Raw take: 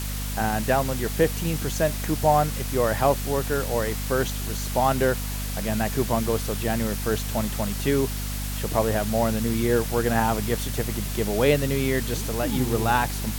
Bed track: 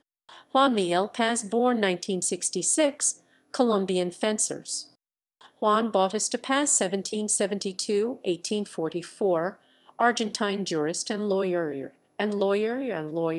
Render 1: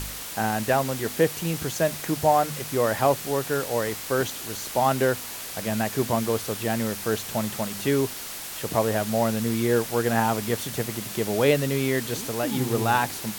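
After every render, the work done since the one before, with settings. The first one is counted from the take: de-hum 50 Hz, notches 5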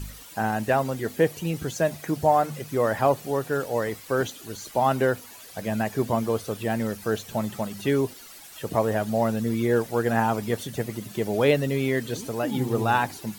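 denoiser 13 dB, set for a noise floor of -36 dBFS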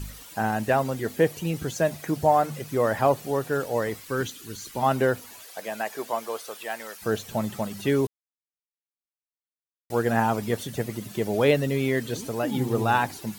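4.04–4.83 bell 670 Hz -13 dB 0.78 oct; 5.42–7.01 HPF 430 Hz -> 890 Hz; 8.07–9.9 mute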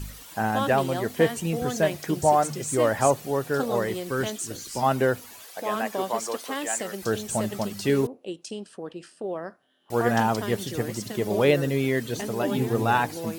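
add bed track -7.5 dB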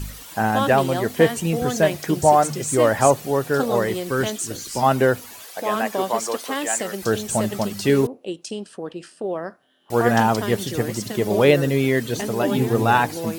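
gain +5 dB

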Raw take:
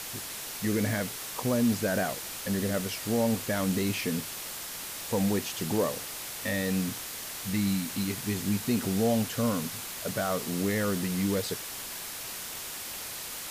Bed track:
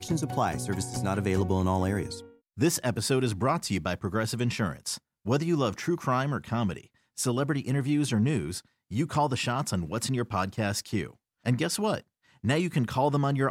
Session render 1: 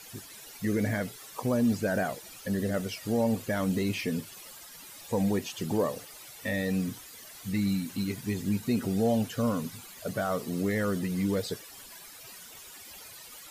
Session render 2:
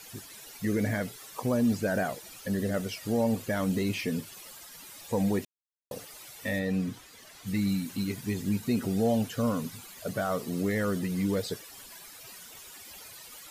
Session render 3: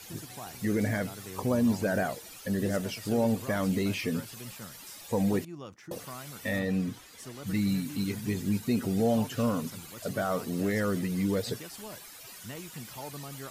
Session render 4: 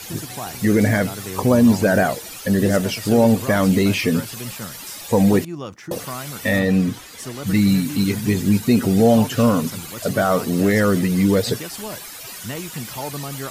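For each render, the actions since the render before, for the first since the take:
denoiser 14 dB, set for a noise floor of -39 dBFS
5.45–5.91 mute; 6.58–7.46 high shelf 5100 Hz -> 9400 Hz -11 dB
add bed track -17 dB
gain +12 dB

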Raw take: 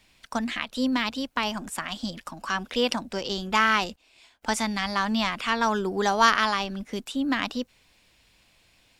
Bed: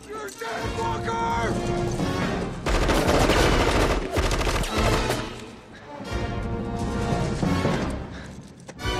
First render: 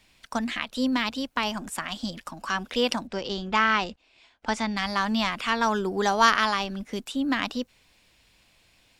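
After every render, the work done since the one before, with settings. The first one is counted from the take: 3.07–4.77 air absorption 97 m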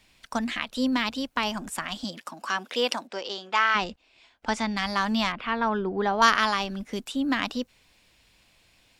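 2.03–3.74 HPF 190 Hz -> 630 Hz; 5.32–6.22 air absorption 370 m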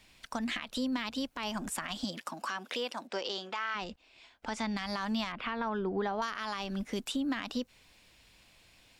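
compressor 10:1, threshold -29 dBFS, peak gain reduction 16 dB; limiter -23.5 dBFS, peak gain reduction 10 dB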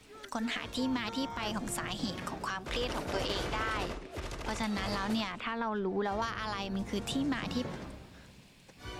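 add bed -17 dB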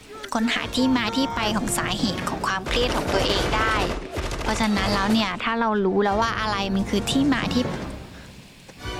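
gain +12 dB

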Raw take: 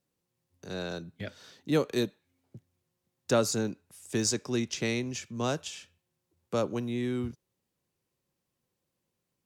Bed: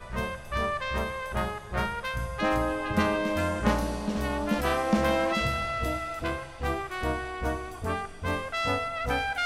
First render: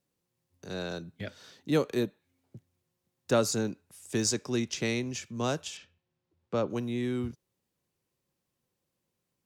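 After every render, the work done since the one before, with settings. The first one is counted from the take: 1.91–3.32 dynamic EQ 5300 Hz, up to -8 dB, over -52 dBFS, Q 0.71; 5.77–6.7 air absorption 140 m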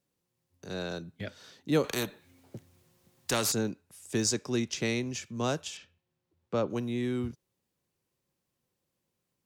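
1.84–3.52 spectral compressor 2:1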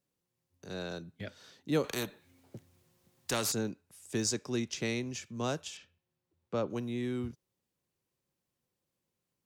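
gain -3.5 dB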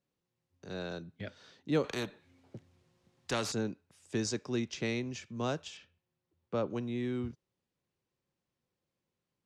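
Bessel low-pass 4600 Hz, order 2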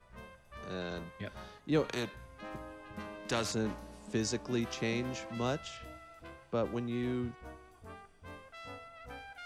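add bed -19.5 dB

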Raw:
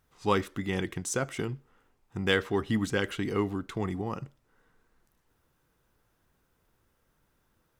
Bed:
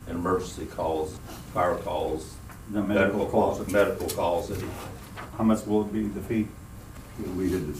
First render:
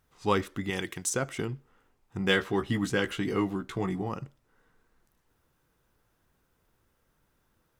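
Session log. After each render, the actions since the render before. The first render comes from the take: 0.7–1.1 tilt +2 dB/oct; 2.18–4.09 doubler 16 ms -5.5 dB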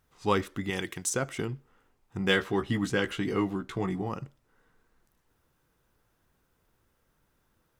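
2.54–4.03 high shelf 10000 Hz -4.5 dB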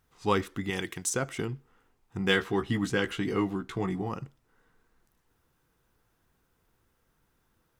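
notch 580 Hz, Q 12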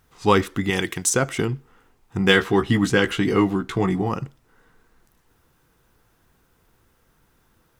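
gain +9.5 dB; limiter -3 dBFS, peak gain reduction 2 dB

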